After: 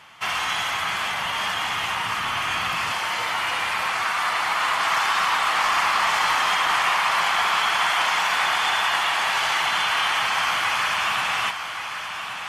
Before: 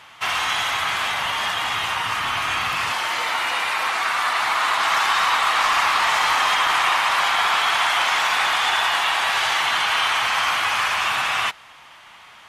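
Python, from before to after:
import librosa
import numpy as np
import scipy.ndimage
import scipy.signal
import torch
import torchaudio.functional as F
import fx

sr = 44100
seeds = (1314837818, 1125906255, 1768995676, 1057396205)

y = fx.peak_eq(x, sr, hz=180.0, db=5.5, octaves=0.52)
y = fx.notch(y, sr, hz=3800.0, q=14.0)
y = fx.echo_feedback(y, sr, ms=1124, feedback_pct=43, wet_db=-8.5)
y = y * librosa.db_to_amplitude(-2.5)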